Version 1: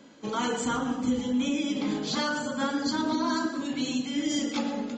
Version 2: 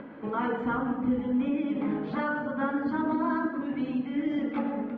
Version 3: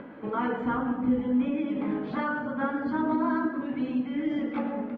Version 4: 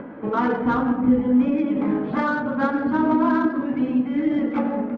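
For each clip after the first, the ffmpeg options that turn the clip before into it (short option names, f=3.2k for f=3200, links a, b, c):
-af "acompressor=mode=upward:threshold=-34dB:ratio=2.5,lowpass=f=2k:w=0.5412,lowpass=f=2k:w=1.3066"
-filter_complex "[0:a]asplit=2[a][b];[b]adelay=16,volume=-10.5dB[c];[a][c]amix=inputs=2:normalize=0"
-af "adynamicsmooth=sensitivity=2.5:basefreq=2.2k,volume=7.5dB"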